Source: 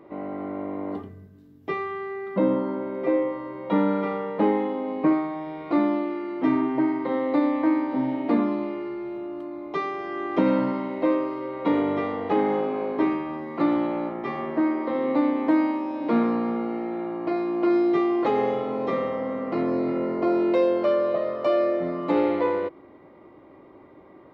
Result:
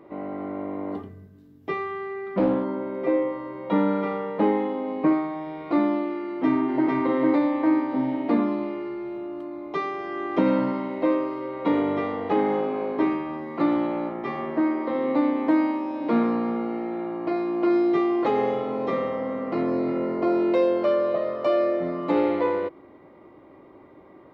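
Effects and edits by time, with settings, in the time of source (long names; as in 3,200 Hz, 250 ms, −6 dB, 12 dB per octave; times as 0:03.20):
0:02.05–0:02.64: highs frequency-modulated by the lows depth 0.27 ms
0:06.23–0:06.90: delay throw 450 ms, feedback 30%, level −1 dB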